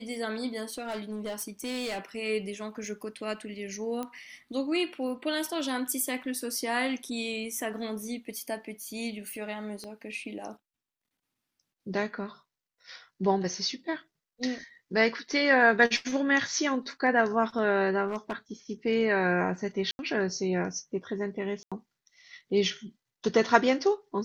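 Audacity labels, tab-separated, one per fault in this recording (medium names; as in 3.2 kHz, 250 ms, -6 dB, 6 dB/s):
0.630000	1.990000	clipped -30 dBFS
4.030000	4.030000	pop -21 dBFS
9.840000	9.840000	pop -28 dBFS
18.070000	18.360000	clipped -27.5 dBFS
19.910000	19.990000	dropout 81 ms
21.630000	21.720000	dropout 86 ms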